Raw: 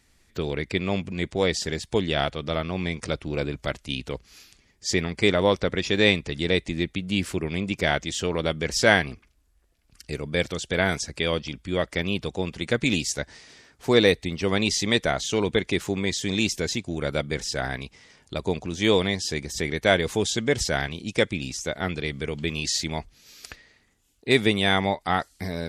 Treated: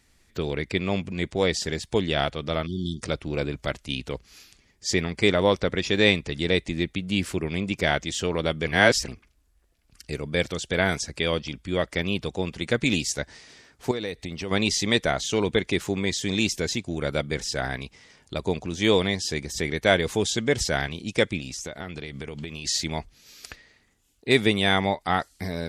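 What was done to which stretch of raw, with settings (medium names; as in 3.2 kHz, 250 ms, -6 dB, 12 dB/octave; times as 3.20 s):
2.67–3.02 s: spectral selection erased 390–3000 Hz
8.67–9.08 s: reverse
13.91–14.51 s: compression 4:1, threshold -29 dBFS
21.39–22.66 s: compression 10:1, threshold -30 dBFS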